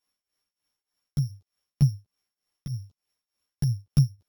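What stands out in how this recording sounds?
a buzz of ramps at a fixed pitch in blocks of 8 samples; tremolo triangle 3.3 Hz, depth 90%; a shimmering, thickened sound

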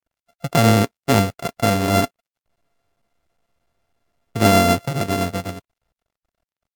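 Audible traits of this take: a buzz of ramps at a fixed pitch in blocks of 64 samples; tremolo triangle 7.7 Hz, depth 35%; a quantiser's noise floor 12-bit, dither none; Vorbis

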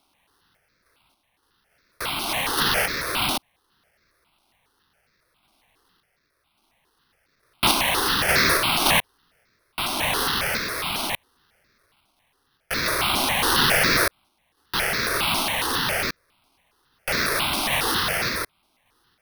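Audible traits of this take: a quantiser's noise floor 12-bit, dither triangular; random-step tremolo; aliases and images of a low sample rate 7.3 kHz, jitter 0%; notches that jump at a steady rate 7.3 Hz 480–3000 Hz

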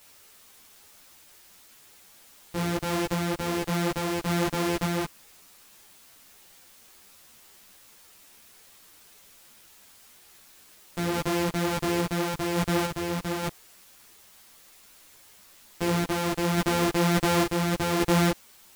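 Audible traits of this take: a buzz of ramps at a fixed pitch in blocks of 256 samples; random-step tremolo 3.5 Hz; a quantiser's noise floor 10-bit, dither triangular; a shimmering, thickened sound

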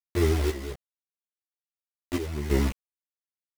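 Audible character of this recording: phasing stages 12, 1.3 Hz, lowest notch 140–1100 Hz; a quantiser's noise floor 6-bit, dither none; chopped level 1.2 Hz, depth 65%, duty 60%; a shimmering, thickened sound

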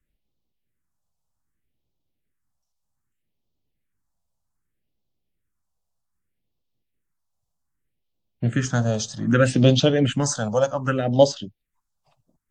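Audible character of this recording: phasing stages 4, 0.64 Hz, lowest notch 320–1700 Hz; AAC

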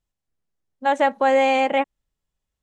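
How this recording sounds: noise floor -84 dBFS; spectral tilt -5.5 dB/octave

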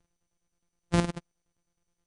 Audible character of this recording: a buzz of ramps at a fixed pitch in blocks of 256 samples; chopped level 9.6 Hz, depth 65%, duty 60%; MP2

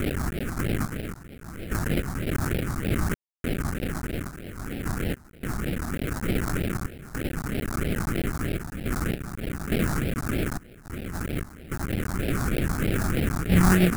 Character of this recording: a quantiser's noise floor 6-bit, dither triangular; random-step tremolo, depth 100%; aliases and images of a low sample rate 1 kHz, jitter 20%; phasing stages 4, 3.2 Hz, lowest notch 470–1100 Hz

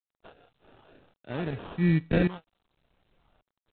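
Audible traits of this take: phasing stages 6, 1.1 Hz, lowest notch 320–1500 Hz; aliases and images of a low sample rate 2.1 kHz, jitter 0%; tremolo saw up 0.88 Hz, depth 85%; G.726

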